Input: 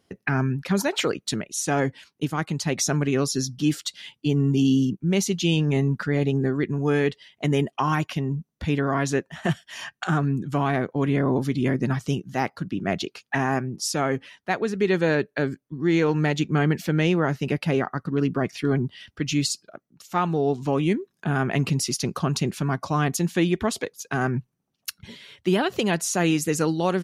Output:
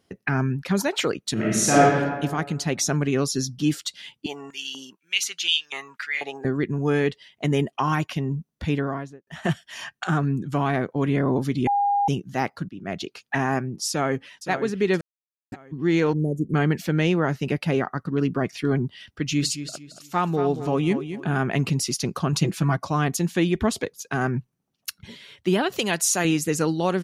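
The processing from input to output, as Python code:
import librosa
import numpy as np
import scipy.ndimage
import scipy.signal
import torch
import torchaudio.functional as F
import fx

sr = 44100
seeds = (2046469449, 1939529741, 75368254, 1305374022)

y = fx.reverb_throw(x, sr, start_s=1.33, length_s=0.48, rt60_s=1.5, drr_db=-8.0)
y = fx.filter_held_highpass(y, sr, hz=4.1, low_hz=800.0, high_hz=3300.0, at=(4.26, 6.45))
y = fx.studio_fade_out(y, sr, start_s=8.67, length_s=0.6)
y = fx.echo_throw(y, sr, start_s=13.89, length_s=0.62, ms=520, feedback_pct=45, wet_db=-10.5)
y = fx.ellip_bandstop(y, sr, low_hz=510.0, high_hz=9400.0, order=3, stop_db=50, at=(16.13, 16.54))
y = fx.echo_feedback(y, sr, ms=227, feedback_pct=29, wet_db=-10.5, at=(19.08, 21.4))
y = fx.comb(y, sr, ms=6.1, depth=0.77, at=(22.32, 22.77))
y = fx.low_shelf(y, sr, hz=210.0, db=8.0, at=(23.55, 24.0))
y = fx.tilt_eq(y, sr, slope=2.0, at=(25.72, 26.25))
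y = fx.edit(y, sr, fx.bleep(start_s=11.67, length_s=0.41, hz=810.0, db=-18.0),
    fx.fade_in_from(start_s=12.69, length_s=0.52, floor_db=-13.5),
    fx.silence(start_s=15.01, length_s=0.51), tone=tone)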